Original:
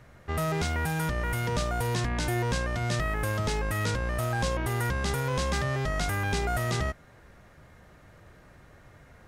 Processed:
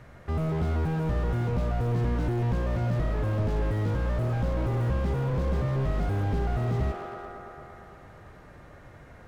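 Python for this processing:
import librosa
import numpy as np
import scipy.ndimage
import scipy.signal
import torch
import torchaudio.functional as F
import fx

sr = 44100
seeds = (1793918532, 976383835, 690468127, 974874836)

p1 = fx.high_shelf(x, sr, hz=3600.0, db=-6.5)
p2 = p1 + fx.echo_wet_bandpass(p1, sr, ms=114, feedback_pct=79, hz=620.0, wet_db=-8.0, dry=0)
p3 = fx.slew_limit(p2, sr, full_power_hz=9.8)
y = p3 * librosa.db_to_amplitude(4.0)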